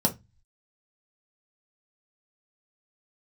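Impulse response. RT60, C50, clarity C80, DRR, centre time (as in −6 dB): 0.20 s, 16.5 dB, 27.5 dB, 1.0 dB, 8 ms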